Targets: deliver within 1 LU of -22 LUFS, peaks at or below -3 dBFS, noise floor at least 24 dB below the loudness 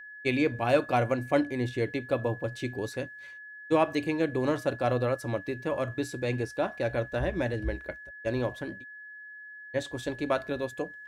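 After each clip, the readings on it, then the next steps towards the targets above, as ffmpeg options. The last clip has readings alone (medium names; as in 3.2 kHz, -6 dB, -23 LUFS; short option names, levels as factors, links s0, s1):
steady tone 1.7 kHz; tone level -43 dBFS; loudness -30.0 LUFS; peak level -11.5 dBFS; loudness target -22.0 LUFS
-> -af "bandreject=f=1700:w=30"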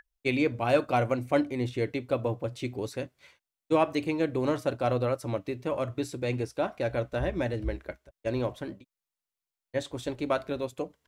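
steady tone not found; loudness -30.0 LUFS; peak level -11.5 dBFS; loudness target -22.0 LUFS
-> -af "volume=2.51"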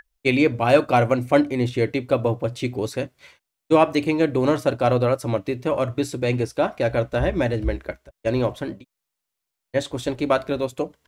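loudness -22.0 LUFS; peak level -3.5 dBFS; noise floor -83 dBFS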